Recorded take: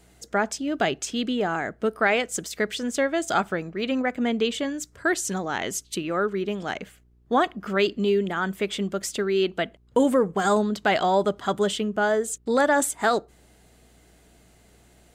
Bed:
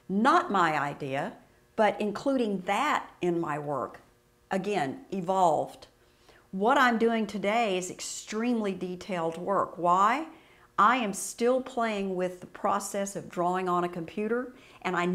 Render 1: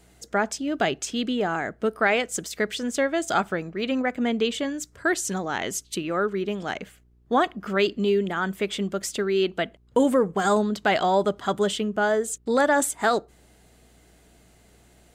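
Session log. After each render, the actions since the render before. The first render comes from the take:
no processing that can be heard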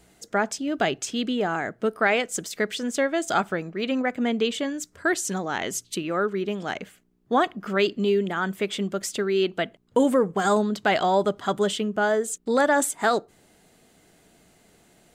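hum removal 60 Hz, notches 2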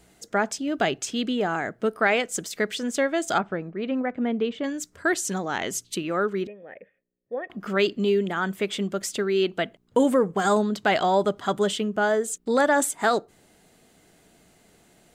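0:03.38–0:04.64: head-to-tape spacing loss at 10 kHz 31 dB
0:06.47–0:07.50: formant resonators in series e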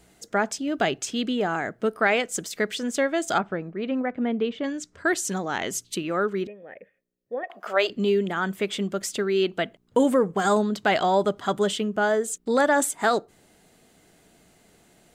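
0:04.03–0:05.06: low-pass filter 6,700 Hz
0:07.43–0:07.90: high-pass with resonance 670 Hz, resonance Q 3.3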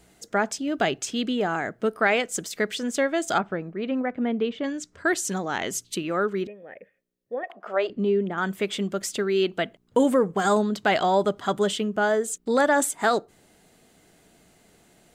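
0:07.52–0:08.38: low-pass filter 1,000 Hz 6 dB per octave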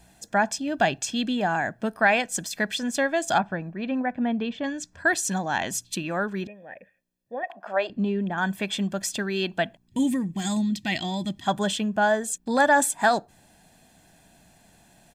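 comb filter 1.2 ms, depth 64%
0:09.87–0:11.46: gain on a spectral selection 370–1,800 Hz −16 dB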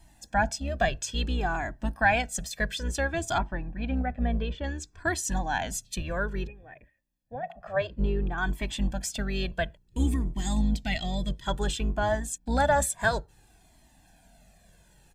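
sub-octave generator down 2 octaves, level +1 dB
flanger whose copies keep moving one way falling 0.58 Hz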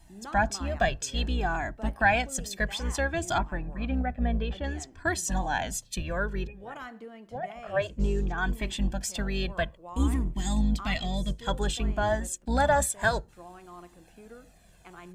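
mix in bed −19.5 dB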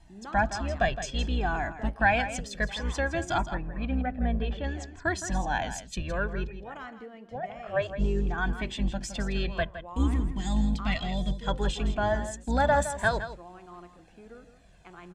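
high-frequency loss of the air 72 metres
on a send: single-tap delay 164 ms −11.5 dB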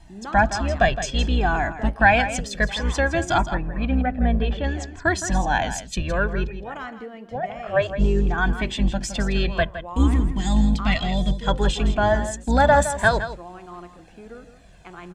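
level +7.5 dB

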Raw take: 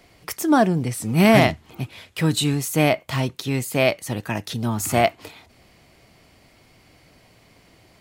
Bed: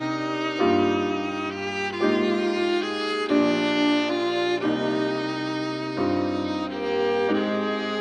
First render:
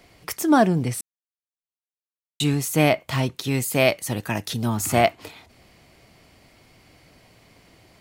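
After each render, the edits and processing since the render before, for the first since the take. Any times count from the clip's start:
0:01.01–0:02.40: silence
0:03.44–0:04.77: high-shelf EQ 6,300 Hz +5.5 dB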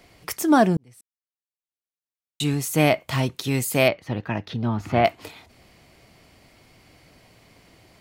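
0:00.77–0:02.91: fade in
0:03.88–0:05.05: high-frequency loss of the air 290 metres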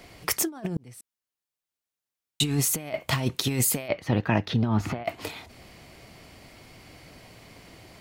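compressor whose output falls as the input rises −25 dBFS, ratio −0.5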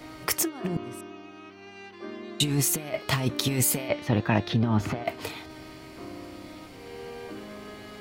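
mix in bed −17.5 dB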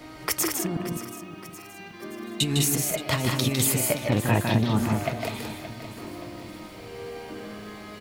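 loudspeakers that aren't time-aligned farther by 53 metres −5 dB, 69 metres −6 dB
feedback echo at a low word length 573 ms, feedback 55%, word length 8 bits, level −14 dB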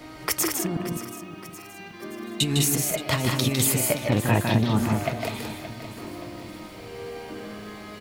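level +1 dB

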